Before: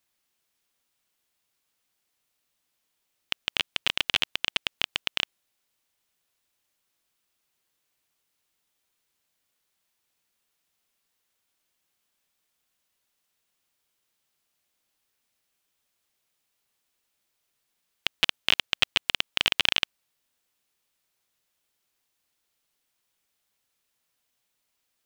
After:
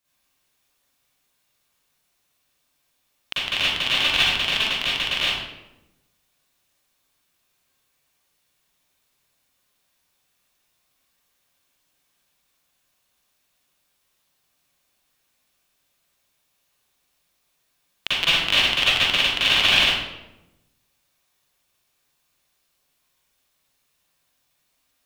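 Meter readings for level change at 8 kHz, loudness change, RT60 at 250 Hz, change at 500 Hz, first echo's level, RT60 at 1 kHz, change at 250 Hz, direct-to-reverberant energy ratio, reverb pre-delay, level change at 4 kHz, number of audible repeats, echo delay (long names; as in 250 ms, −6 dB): +6.5 dB, +7.5 dB, 1.3 s, +8.5 dB, no echo audible, 0.85 s, +9.0 dB, −11.0 dB, 39 ms, +7.5 dB, no echo audible, no echo audible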